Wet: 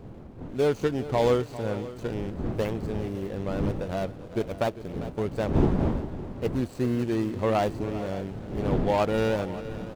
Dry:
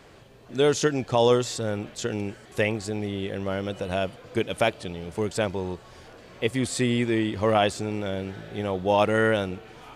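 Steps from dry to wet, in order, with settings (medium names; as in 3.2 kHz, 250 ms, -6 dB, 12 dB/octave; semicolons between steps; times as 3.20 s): median filter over 25 samples; wind noise 260 Hz -31 dBFS; multi-tap echo 399/564 ms -15/-17 dB; trim -2 dB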